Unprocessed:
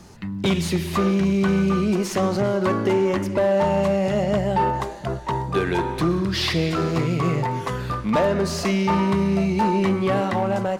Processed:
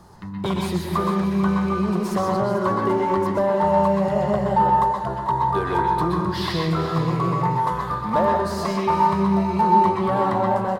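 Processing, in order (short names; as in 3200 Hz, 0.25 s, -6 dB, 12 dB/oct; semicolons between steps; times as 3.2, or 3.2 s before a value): fifteen-band EQ 250 Hz -5 dB, 1000 Hz +8 dB, 2500 Hz -10 dB, 6300 Hz -8 dB; echo 0.442 s -13 dB; on a send at -1 dB: reverb RT60 0.40 s, pre-delay 0.118 s; on the sum: gain -2.5 dB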